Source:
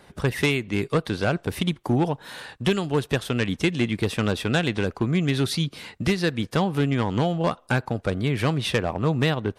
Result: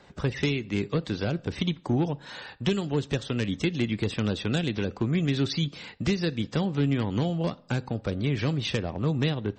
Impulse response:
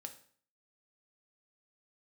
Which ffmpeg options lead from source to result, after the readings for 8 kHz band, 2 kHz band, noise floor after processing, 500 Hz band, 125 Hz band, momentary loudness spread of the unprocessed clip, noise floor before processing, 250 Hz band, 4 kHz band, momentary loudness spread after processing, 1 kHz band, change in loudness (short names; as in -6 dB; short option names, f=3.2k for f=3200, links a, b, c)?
-7.0 dB, -7.0 dB, -52 dBFS, -5.0 dB, -2.5 dB, 4 LU, -56 dBFS, -2.5 dB, -3.5 dB, 5 LU, -9.0 dB, -3.5 dB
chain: -filter_complex "[0:a]acrossover=split=470|3000[a][b][c];[b]acompressor=threshold=-34dB:ratio=5[d];[a][d][c]amix=inputs=3:normalize=0,asplit=2[e][f];[1:a]atrim=start_sample=2205,afade=t=out:st=0.33:d=0.01,atrim=end_sample=14994[g];[f][g]afir=irnorm=-1:irlink=0,volume=-4.5dB[h];[e][h]amix=inputs=2:normalize=0,volume=-4.5dB" -ar 48000 -c:a libmp3lame -b:a 32k